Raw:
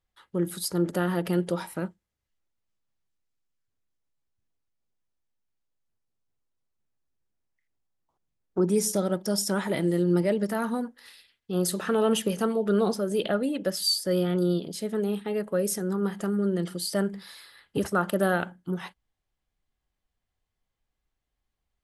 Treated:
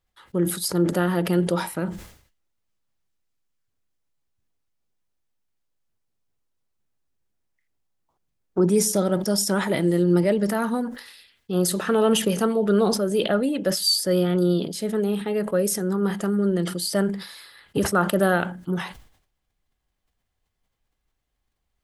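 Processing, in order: decay stretcher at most 95 dB/s; trim +4 dB

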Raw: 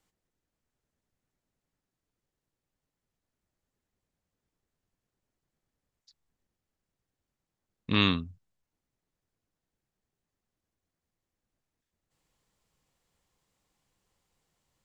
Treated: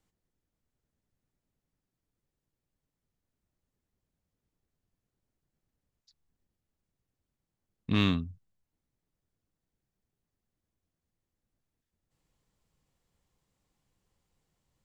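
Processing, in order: bass shelf 360 Hz +7.5 dB; in parallel at -8 dB: hard clipper -21.5 dBFS, distortion -6 dB; on the sum: trim -7 dB

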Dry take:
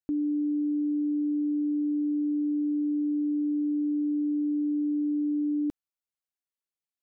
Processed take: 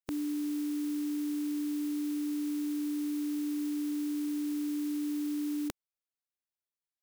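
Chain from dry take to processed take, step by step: spectral contrast reduction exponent 0.45; trim -5.5 dB

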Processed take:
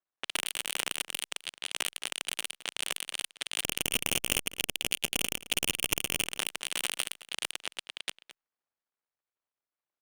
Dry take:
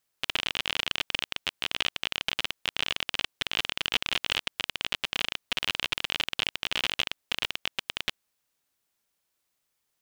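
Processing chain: dead-time distortion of 0.081 ms; high-pass 300 Hz 12 dB/octave; level-controlled noise filter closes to 1.6 kHz, open at -34 dBFS; treble shelf 6.5 kHz +4 dB; 3.64–6.28 s: waveshaping leveller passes 3; wavefolder -11.5 dBFS; echo from a far wall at 37 m, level -15 dB; Opus 96 kbps 48 kHz

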